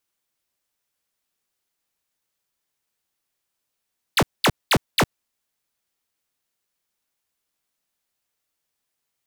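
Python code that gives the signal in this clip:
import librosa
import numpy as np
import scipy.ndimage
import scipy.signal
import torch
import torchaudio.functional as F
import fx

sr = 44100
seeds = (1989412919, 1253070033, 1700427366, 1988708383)

y = fx.laser_zaps(sr, level_db=-16, start_hz=5200.0, end_hz=82.0, length_s=0.06, wave='square', shots=4, gap_s=0.21)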